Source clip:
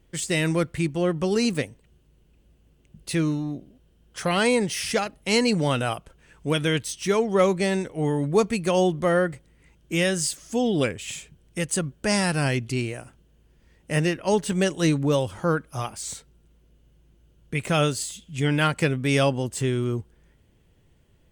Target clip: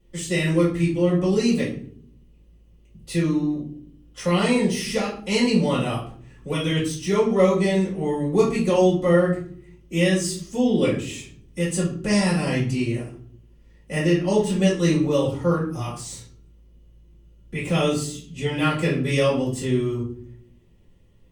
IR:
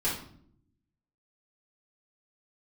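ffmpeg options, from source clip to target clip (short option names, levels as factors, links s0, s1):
-filter_complex "[0:a]bandreject=f=1500:w=7.3[s0];[1:a]atrim=start_sample=2205,asetrate=52920,aresample=44100[s1];[s0][s1]afir=irnorm=-1:irlink=0,volume=0.473"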